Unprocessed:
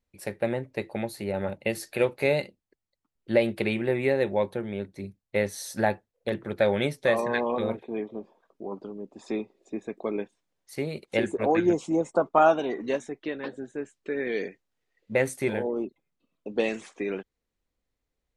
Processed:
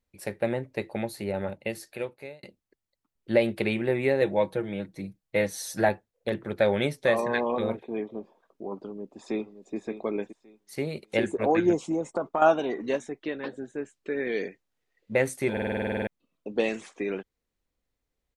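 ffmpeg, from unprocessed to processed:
ffmpeg -i in.wav -filter_complex "[0:a]asettb=1/sr,asplit=3[link_01][link_02][link_03];[link_01]atrim=end=4.214[link_04];[link_02]atrim=start=4.21:end=5.89,asetpts=PTS-STARTPTS,afade=type=in:duration=0.004:curve=qsin,afade=type=out:start_time=1.676:duration=0.004:curve=qsin,aecho=1:1:6.3:0.65,atrim=end_sample=74088[link_05];[link_03]atrim=start=5.886[link_06];[link_04][link_05]acrossfade=duration=0.004:curve1=hsin:curve2=qsin[link_07];[link_07][link_06]acrossfade=duration=0.004:curve1=qsin:curve2=hsin,asplit=2[link_08][link_09];[link_09]afade=type=in:start_time=8.73:duration=0.01,afade=type=out:start_time=9.75:duration=0.01,aecho=0:1:570|1140|1710:0.281838|0.0563677|0.0112735[link_10];[link_08][link_10]amix=inputs=2:normalize=0,asettb=1/sr,asplit=3[link_11][link_12][link_13];[link_11]atrim=end=11.834[link_14];[link_12]atrim=start=11.83:end=12.42,asetpts=PTS-STARTPTS,afade=type=in:duration=0.004:curve=qsin,afade=type=out:start_time=0.586:duration=0.004:curve=qsin,acompressor=threshold=-23dB:ratio=5:attack=3.2:release=140:knee=1:detection=peak[link_15];[link_13]atrim=start=12.416[link_16];[link_14][link_15]acrossfade=duration=0.004:curve1=hsin:curve2=qsin[link_17];[link_17][link_16]acrossfade=duration=0.004:curve1=qsin:curve2=hsin,asplit=13[link_18][link_19][link_20][link_21][link_22][link_23][link_24][link_25][link_26][link_27][link_28][link_29][link_30];[link_18]atrim=end=2.43,asetpts=PTS-STARTPTS,afade=type=out:start_time=1.25:duration=1.18[link_31];[link_19]atrim=start=2.43:end=15.572,asetpts=PTS-STARTPTS,afade=type=in:duration=0.004:curve=hsin[link_32];[link_20]atrim=start=15.518:end=15.572[link_33];[link_21]atrim=start=15.518:end=15.572[link_34];[link_22]atrim=start=15.518:end=15.572[link_35];[link_23]atrim=start=15.518:end=15.572[link_36];[link_24]atrim=start=15.518:end=15.572[link_37];[link_25]atrim=start=15.518:end=15.572[link_38];[link_26]atrim=start=15.518:end=15.572[link_39];[link_27]atrim=start=15.518:end=15.572[link_40];[link_28]atrim=start=15.518:end=15.572[link_41];[link_29]atrim=start=15.518:end=15.572[link_42];[link_30]atrim=start=16.068[link_43];[link_31][link_32]concat=n=2:v=0:a=1[link_44];[link_44][link_33]acrossfade=duration=0.004:curve1=hsin:curve2=hsin[link_45];[link_45][link_34]acrossfade=duration=0.004:curve1=hsin:curve2=hsin[link_46];[link_46][link_35]acrossfade=duration=0.004:curve1=hsin:curve2=hsin[link_47];[link_47][link_36]acrossfade=duration=0.004:curve1=hsin:curve2=hsin[link_48];[link_48][link_37]acrossfade=duration=0.004:curve1=hsin:curve2=hsin[link_49];[link_49][link_38]acrossfade=duration=0.004:curve1=hsin:curve2=hsin[link_50];[link_50][link_39]acrossfade=duration=0.004:curve1=hsin:curve2=hsin[link_51];[link_51][link_40]acrossfade=duration=0.004:curve1=hsin:curve2=hsin[link_52];[link_52][link_41]acrossfade=duration=0.004:curve1=hsin:curve2=hsin[link_53];[link_53][link_42]acrossfade=duration=0.004:curve1=hsin:curve2=hsin[link_54];[link_54][link_43]acrossfade=duration=0.004:curve1=hsin:curve2=hsin" out.wav

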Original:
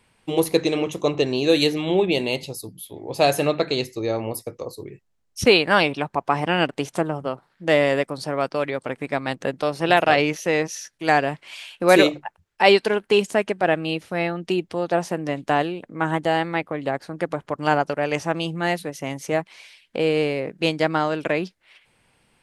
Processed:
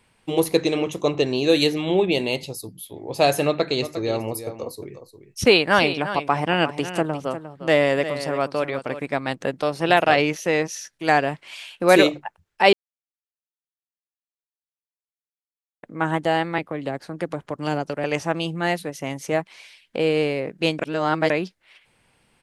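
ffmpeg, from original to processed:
ffmpeg -i in.wav -filter_complex "[0:a]asplit=3[link_01][link_02][link_03];[link_01]afade=type=out:start_time=3.81:duration=0.02[link_04];[link_02]aecho=1:1:354:0.266,afade=type=in:start_time=3.81:duration=0.02,afade=type=out:start_time=9.02:duration=0.02[link_05];[link_03]afade=type=in:start_time=9.02:duration=0.02[link_06];[link_04][link_05][link_06]amix=inputs=3:normalize=0,asettb=1/sr,asplit=3[link_07][link_08][link_09];[link_07]atrim=end=16.584[link_10];[link_08]atrim=start=16.58:end=18.04,asetpts=PTS-STARTPTS,afade=type=in:duration=0.004:curve=qsin,afade=type=out:start_time=1.456:duration=0.004:curve=qsin,acrossover=split=490|3000[link_11][link_12][link_13];[link_12]acompressor=threshold=-32dB:ratio=2.5:attack=3.2:release=140:knee=2.83:detection=peak[link_14];[link_11][link_14][link_13]amix=inputs=3:normalize=0[link_15];[link_09]atrim=start=18.036[link_16];[link_10][link_15]acrossfade=duration=0.004:curve1=hsin:curve2=qsin[link_17];[link_17][link_16]acrossfade=duration=0.004:curve1=qsin:curve2=hsin,asplit=5[link_18][link_19][link_20][link_21][link_22];[link_18]atrim=end=12.73,asetpts=PTS-STARTPTS,afade=type=out:start_time=12.726:duration=0.004:curve=hsin[link_23];[link_19]atrim=start=12.73:end=15.83,asetpts=PTS-STARTPTS,volume=0[link_24];[link_20]atrim=start=15.83:end=20.792,asetpts=PTS-STARTPTS,afade=type=in:duration=0.004:curve=hsin[link_25];[link_21]atrim=start=20.788:end=21.302,asetpts=PTS-STARTPTS,areverse[link_26];[link_22]atrim=start=21.298[link_27];[link_23][link_24][link_25]concat=n=3:v=0:a=1[link_28];[link_28][link_26]acrossfade=duration=0.004:curve1=hsin:curve2=hsin[link_29];[link_29][link_27]acrossfade=duration=0.004:curve1=hsin:curve2=hsin" out.wav

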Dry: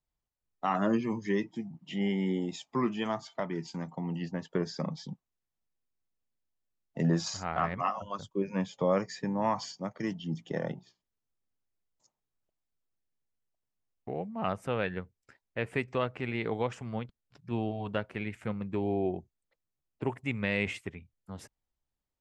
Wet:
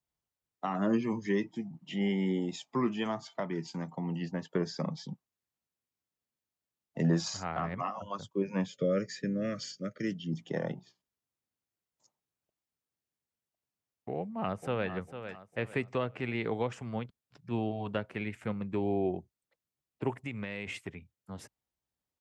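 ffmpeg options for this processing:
ffmpeg -i in.wav -filter_complex "[0:a]asettb=1/sr,asplit=3[link_01][link_02][link_03];[link_01]atrim=end=8.664[link_04];[link_02]atrim=start=8.66:end=10.33,asetpts=PTS-STARTPTS,afade=type=in:duration=0.004:curve=qsin,afade=type=out:start_time=1.666:duration=0.004:curve=qsin,asuperstop=centerf=870:order=12:qfactor=1.4[link_05];[link_03]atrim=start=10.326[link_06];[link_04][link_05]acrossfade=duration=0.004:curve1=hsin:curve2=qsin[link_07];[link_07][link_06]acrossfade=duration=0.004:curve1=qsin:curve2=hsin,asplit=2[link_08][link_09];[link_09]afade=type=in:start_time=14.17:duration=0.01,afade=type=out:start_time=14.9:duration=0.01,aecho=0:1:450|900|1350|1800:0.281838|0.0986434|0.0345252|0.0120838[link_10];[link_08][link_10]amix=inputs=2:normalize=0,asettb=1/sr,asplit=3[link_11][link_12][link_13];[link_11]atrim=end=20.214[link_14];[link_12]atrim=start=20.21:end=20.88,asetpts=PTS-STARTPTS,afade=type=in:duration=0.004:curve=qsin,afade=type=out:start_time=0.666:duration=0.004:curve=qsin,acompressor=threshold=-33dB:ratio=6:attack=3.2:release=140:knee=1:detection=peak[link_15];[link_13]atrim=start=20.876[link_16];[link_14][link_15]acrossfade=duration=0.004:curve1=hsin:curve2=qsin[link_17];[link_17][link_16]acrossfade=duration=0.004:curve1=qsin:curve2=hsin,highpass=79,acrossover=split=480[link_18][link_19];[link_19]acompressor=threshold=-32dB:ratio=6[link_20];[link_18][link_20]amix=inputs=2:normalize=0" out.wav

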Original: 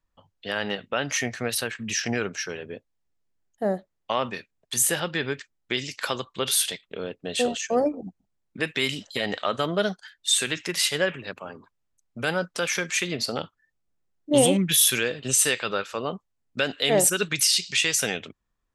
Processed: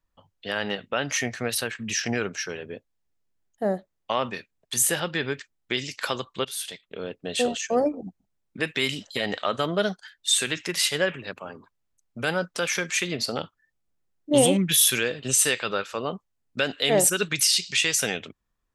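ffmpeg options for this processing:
ffmpeg -i in.wav -filter_complex "[0:a]asplit=2[link_01][link_02];[link_01]atrim=end=6.45,asetpts=PTS-STARTPTS,afade=type=out:start_time=6.446:duration=0.004:curve=hsin:silence=0.158489[link_03];[link_02]atrim=start=6.45,asetpts=PTS-STARTPTS,afade=type=in:duration=0.68:silence=0.158489[link_04];[link_03][link_04]concat=n=2:v=0:a=1" out.wav

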